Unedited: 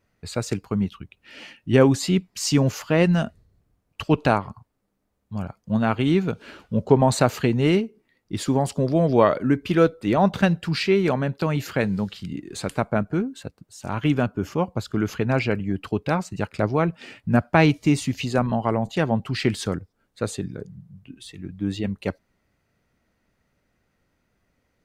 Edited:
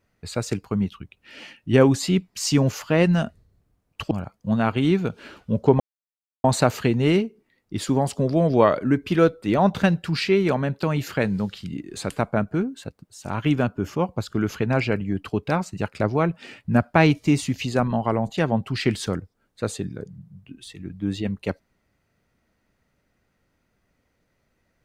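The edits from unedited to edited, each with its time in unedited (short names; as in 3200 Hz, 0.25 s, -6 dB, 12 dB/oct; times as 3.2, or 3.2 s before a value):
4.11–5.34 cut
7.03 insert silence 0.64 s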